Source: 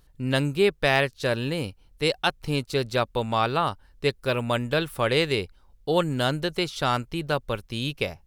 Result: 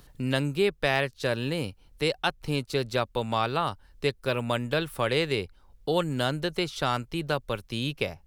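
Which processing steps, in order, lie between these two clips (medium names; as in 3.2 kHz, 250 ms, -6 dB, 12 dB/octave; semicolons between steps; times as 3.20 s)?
three bands compressed up and down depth 40%; trim -3 dB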